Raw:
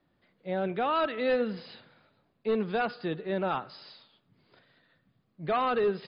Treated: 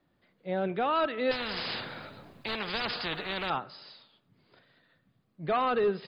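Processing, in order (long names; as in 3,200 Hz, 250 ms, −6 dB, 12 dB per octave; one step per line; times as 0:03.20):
0:01.31–0:03.50: every bin compressed towards the loudest bin 4 to 1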